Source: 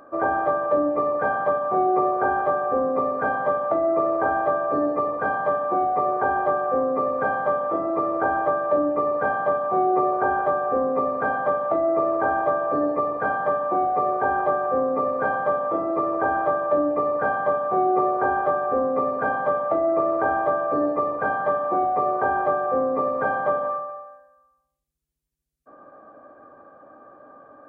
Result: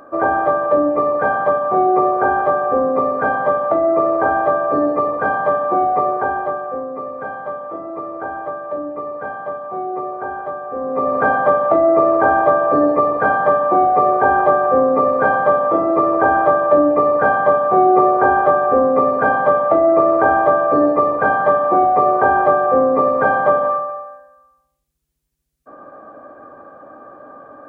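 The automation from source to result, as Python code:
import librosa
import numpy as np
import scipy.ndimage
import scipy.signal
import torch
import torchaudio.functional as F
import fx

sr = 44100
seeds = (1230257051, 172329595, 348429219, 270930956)

y = fx.gain(x, sr, db=fx.line((5.97, 6.0), (6.88, -4.0), (10.72, -4.0), (11.16, 8.5)))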